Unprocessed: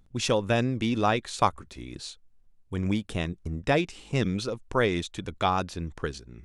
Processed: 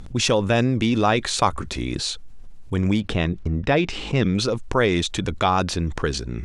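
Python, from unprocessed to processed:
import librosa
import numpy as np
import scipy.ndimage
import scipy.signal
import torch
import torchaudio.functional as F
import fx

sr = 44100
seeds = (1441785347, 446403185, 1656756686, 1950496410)

y = fx.lowpass(x, sr, hz=fx.steps((0.0, 9600.0), (3.0, 4200.0), (4.35, 9000.0)), slope=12)
y = fx.env_flatten(y, sr, amount_pct=50)
y = y * 10.0 ** (2.5 / 20.0)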